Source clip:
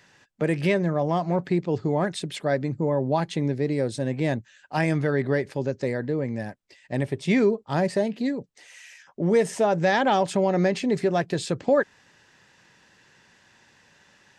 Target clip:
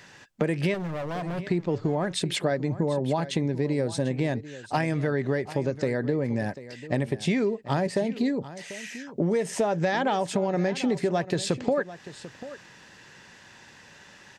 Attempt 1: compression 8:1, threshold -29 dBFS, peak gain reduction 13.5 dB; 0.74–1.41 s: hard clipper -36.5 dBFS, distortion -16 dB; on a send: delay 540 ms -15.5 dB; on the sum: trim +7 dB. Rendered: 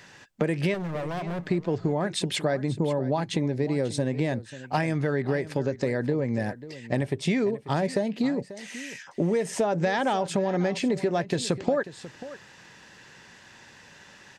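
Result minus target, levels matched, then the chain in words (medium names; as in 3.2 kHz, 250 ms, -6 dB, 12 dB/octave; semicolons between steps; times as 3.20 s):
echo 202 ms early
compression 8:1, threshold -29 dBFS, peak gain reduction 13.5 dB; 0.74–1.41 s: hard clipper -36.5 dBFS, distortion -16 dB; on a send: delay 742 ms -15.5 dB; on the sum: trim +7 dB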